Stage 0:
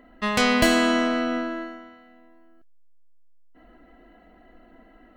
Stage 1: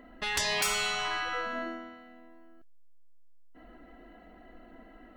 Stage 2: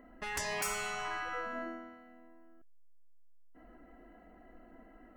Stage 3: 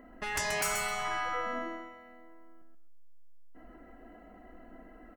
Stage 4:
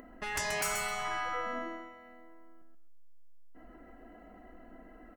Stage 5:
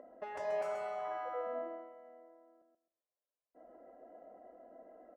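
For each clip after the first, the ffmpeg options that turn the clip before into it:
-af "afftfilt=real='re*lt(hypot(re,im),0.158)':imag='im*lt(hypot(re,im),0.158)':win_size=1024:overlap=0.75"
-af "equalizer=f=3.7k:t=o:w=0.83:g=-12.5,volume=-4dB"
-af "aecho=1:1:131|262|393:0.501|0.0952|0.0181,volume=3.5dB"
-af "acompressor=mode=upward:threshold=-47dB:ratio=2.5,volume=-1.5dB"
-af "bandpass=f=580:t=q:w=4.1:csg=0,volume=6.5dB"

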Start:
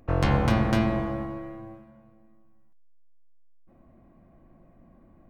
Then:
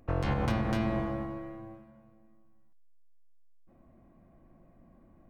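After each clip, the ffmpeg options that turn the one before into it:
-af "alimiter=limit=-15.5dB:level=0:latency=1:release=109,volume=-3.5dB"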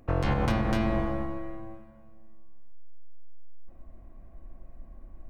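-af "asubboost=boost=10:cutoff=52,volume=3.5dB"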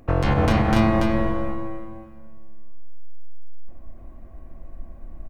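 -af "aecho=1:1:286:0.708,volume=6dB"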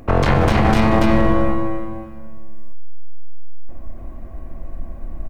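-af "aeval=exprs='clip(val(0),-1,0.0562)':c=same,alimiter=level_in=12.5dB:limit=-1dB:release=50:level=0:latency=1,volume=-3.5dB"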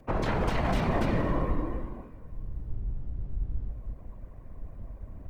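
-af "afftfilt=real='hypot(re,im)*cos(2*PI*random(0))':imag='hypot(re,im)*sin(2*PI*random(1))':win_size=512:overlap=0.75,afreqshift=-55,volume=-6dB"

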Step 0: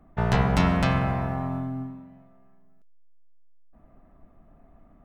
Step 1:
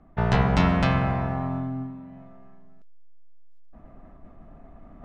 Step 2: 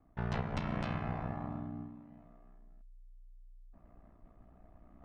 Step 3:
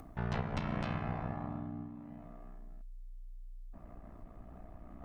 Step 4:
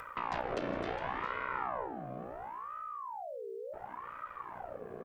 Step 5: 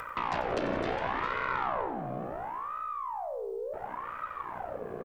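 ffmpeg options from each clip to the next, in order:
-af "lowpass=5.7k,areverse,acompressor=mode=upward:threshold=-38dB:ratio=2.5,areverse,volume=1dB"
-af "aeval=exprs='val(0)*sin(2*PI*30*n/s)':c=same,alimiter=limit=-15dB:level=0:latency=1:release=249,volume=-9dB"
-af "acompressor=mode=upward:threshold=-39dB:ratio=2.5"
-af "alimiter=level_in=6.5dB:limit=-24dB:level=0:latency=1:release=164,volume=-6.5dB,aecho=1:1:411:0.224,aeval=exprs='val(0)*sin(2*PI*840*n/s+840*0.5/0.71*sin(2*PI*0.71*n/s))':c=same,volume=7.5dB"
-af "aeval=exprs='(tanh(22.4*val(0)+0.2)-tanh(0.2))/22.4':c=same,aecho=1:1:92|184|276|368|460:0.211|0.106|0.0528|0.0264|0.0132,volume=6.5dB"

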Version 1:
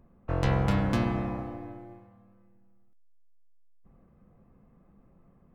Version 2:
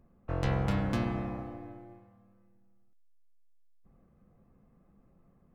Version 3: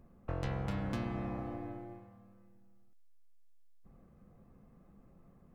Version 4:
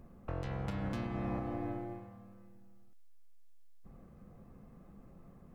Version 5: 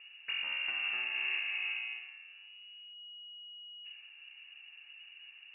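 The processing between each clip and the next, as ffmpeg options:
-af "bandreject=f=970:w=20,volume=-4dB"
-af "acompressor=threshold=-39dB:ratio=3,volume=3dB"
-af "alimiter=level_in=8.5dB:limit=-24dB:level=0:latency=1:release=294,volume=-8.5dB,volume=5dB"
-af "lowpass=f=2.5k:t=q:w=0.5098,lowpass=f=2.5k:t=q:w=0.6013,lowpass=f=2.5k:t=q:w=0.9,lowpass=f=2.5k:t=q:w=2.563,afreqshift=-2900,volume=1.5dB"

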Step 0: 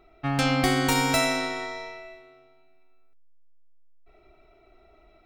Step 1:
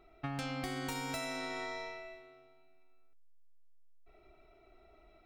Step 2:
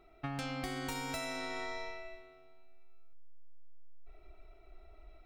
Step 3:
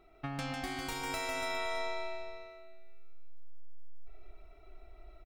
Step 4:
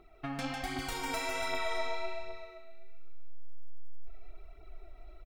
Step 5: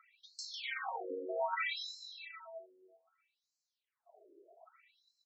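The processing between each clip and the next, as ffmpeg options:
-af "acompressor=threshold=-30dB:ratio=16,volume=-5dB"
-af "asubboost=boost=4.5:cutoff=76"
-af "aecho=1:1:150|285|406.5|515.8|614.3:0.631|0.398|0.251|0.158|0.1"
-af "aphaser=in_gain=1:out_gain=1:delay=4.5:decay=0.49:speed=1.3:type=triangular"
-af "afftfilt=real='re*between(b*sr/1024,400*pow(5700/400,0.5+0.5*sin(2*PI*0.63*pts/sr))/1.41,400*pow(5700/400,0.5+0.5*sin(2*PI*0.63*pts/sr))*1.41)':imag='im*between(b*sr/1024,400*pow(5700/400,0.5+0.5*sin(2*PI*0.63*pts/sr))/1.41,400*pow(5700/400,0.5+0.5*sin(2*PI*0.63*pts/sr))*1.41)':win_size=1024:overlap=0.75,volume=5dB"

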